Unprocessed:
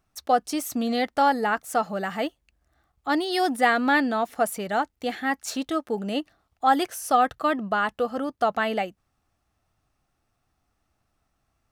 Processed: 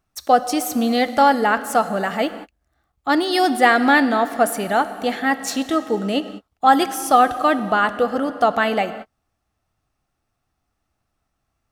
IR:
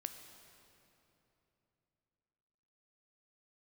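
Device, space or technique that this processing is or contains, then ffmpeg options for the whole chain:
keyed gated reverb: -filter_complex "[0:a]asplit=3[link_01][link_02][link_03];[1:a]atrim=start_sample=2205[link_04];[link_02][link_04]afir=irnorm=-1:irlink=0[link_05];[link_03]apad=whole_len=516564[link_06];[link_05][link_06]sidechaingate=range=-50dB:threshold=-48dB:ratio=16:detection=peak,volume=5.5dB[link_07];[link_01][link_07]amix=inputs=2:normalize=0,volume=-1dB"

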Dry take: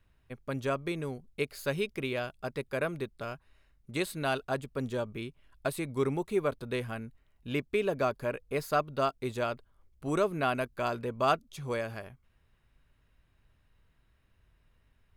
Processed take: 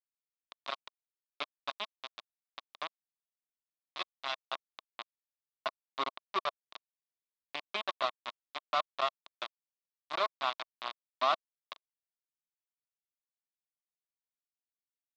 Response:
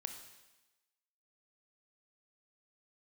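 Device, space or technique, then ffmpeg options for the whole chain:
hand-held game console: -af "acrusher=bits=3:mix=0:aa=0.000001,highpass=410,equalizer=frequency=450:width_type=q:width=4:gain=-9,equalizer=frequency=650:width_type=q:width=4:gain=5,equalizer=frequency=1100:width_type=q:width=4:gain=10,equalizer=frequency=1600:width_type=q:width=4:gain=-4,equalizer=frequency=3700:width_type=q:width=4:gain=8,lowpass=frequency=4300:width=0.5412,lowpass=frequency=4300:width=1.3066,volume=-7.5dB"

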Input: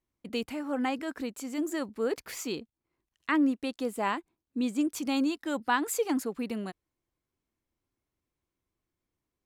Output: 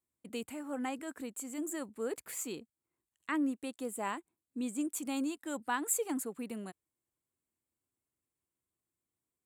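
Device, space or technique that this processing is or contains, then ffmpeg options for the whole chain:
budget condenser microphone: -af "highpass=75,highshelf=frequency=6600:width_type=q:width=3:gain=6.5,volume=-7dB"

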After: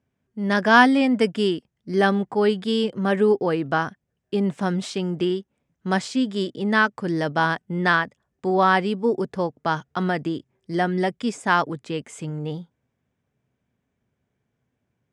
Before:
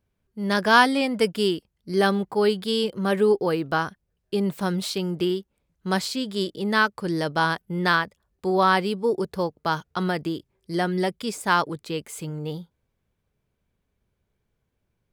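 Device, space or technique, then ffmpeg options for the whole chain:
car door speaker: -af "highpass=90,equalizer=frequency=130:width_type=q:width=4:gain=6,equalizer=frequency=250:width_type=q:width=4:gain=8,equalizer=frequency=710:width_type=q:width=4:gain=4,equalizer=frequency=1800:width_type=q:width=4:gain=4,equalizer=frequency=4300:width_type=q:width=4:gain=-8,lowpass=frequency=8100:width=0.5412,lowpass=frequency=8100:width=1.3066"

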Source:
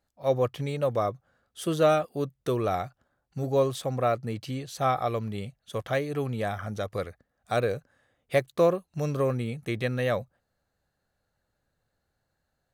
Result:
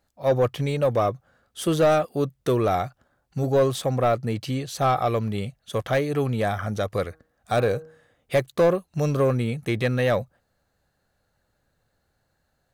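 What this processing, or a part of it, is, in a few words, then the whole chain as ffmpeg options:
saturation between pre-emphasis and de-emphasis: -filter_complex "[0:a]asettb=1/sr,asplit=3[link_01][link_02][link_03];[link_01]atrim=end=7.034[link_04];[link_02]atrim=start=7.03:end=8.37,asetpts=PTS-STARTPTS,afade=type=in:duration=0.004:curve=qsin,afade=type=out:start_time=1.336:duration=0.004:curve=qsin,bandreject=frequency=158.5:width_type=h:width=4,bandreject=frequency=317:width_type=h:width=4,bandreject=frequency=475.5:width_type=h:width=4,bandreject=frequency=634:width_type=h:width=4,bandreject=frequency=792.5:width_type=h:width=4,bandreject=frequency=951:width_type=h:width=4,bandreject=frequency=1109.5:width_type=h:width=4,bandreject=frequency=1268:width_type=h:width=4,bandreject=frequency=1426.5:width_type=h:width=4,bandreject=frequency=1585:width_type=h:width=4[link_05];[link_03]atrim=start=8.366[link_06];[link_04][link_05]acrossfade=duration=0.004:curve1=hsin:curve2=qsin[link_07];[link_07][link_06]acrossfade=duration=0.004:curve1=qsin:curve2=hsin,highshelf=frequency=2500:gain=12,asoftclip=type=tanh:threshold=-18.5dB,highshelf=frequency=2500:gain=-12,volume=6.5dB"

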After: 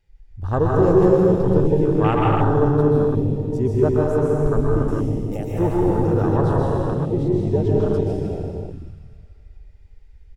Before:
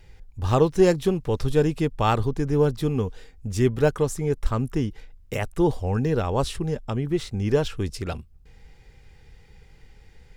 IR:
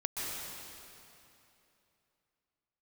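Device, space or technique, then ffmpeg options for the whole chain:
cave: -filter_complex "[0:a]aecho=1:1:160:0.335[link_01];[1:a]atrim=start_sample=2205[link_02];[link_01][link_02]afir=irnorm=-1:irlink=0,afwtdn=0.0562,asettb=1/sr,asplit=3[link_03][link_04][link_05];[link_03]atrim=end=4.884[link_06];[link_04]atrim=start=4.88:end=6.37,asetpts=PTS-STARTPTS,afade=type=in:duration=0.004:curve=qsin,afade=type=out:start_time=1.486:duration=0.004:curve=qsin,highshelf=frequency=3700:gain=11[link_07];[link_05]atrim=start=6.366[link_08];[link_06][link_07]acrossfade=duration=0.004:curve1=hsin:curve2=qsin[link_09];[link_09][link_08]acrossfade=duration=0.004:curve1=qsin:curve2=hsin"

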